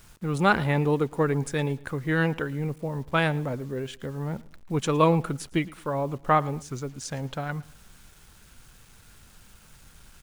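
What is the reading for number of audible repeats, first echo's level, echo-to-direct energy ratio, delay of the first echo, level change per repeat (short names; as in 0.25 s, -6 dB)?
2, -22.0 dB, -21.5 dB, 0.112 s, -9.5 dB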